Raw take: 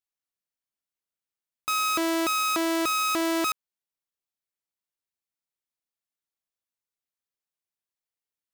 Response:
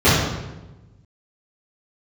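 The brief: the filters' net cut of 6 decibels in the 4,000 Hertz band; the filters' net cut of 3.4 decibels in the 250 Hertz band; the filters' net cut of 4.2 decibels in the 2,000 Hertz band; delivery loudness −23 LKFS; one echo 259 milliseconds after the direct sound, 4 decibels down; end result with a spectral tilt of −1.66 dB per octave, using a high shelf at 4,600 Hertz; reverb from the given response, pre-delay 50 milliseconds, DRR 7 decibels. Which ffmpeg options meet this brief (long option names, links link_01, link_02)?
-filter_complex "[0:a]equalizer=frequency=250:width_type=o:gain=-5.5,equalizer=frequency=2000:width_type=o:gain=-3,equalizer=frequency=4000:width_type=o:gain=-8.5,highshelf=frequency=4600:gain=3.5,aecho=1:1:259:0.631,asplit=2[link_01][link_02];[1:a]atrim=start_sample=2205,adelay=50[link_03];[link_02][link_03]afir=irnorm=-1:irlink=0,volume=-33dB[link_04];[link_01][link_04]amix=inputs=2:normalize=0,volume=1.5dB"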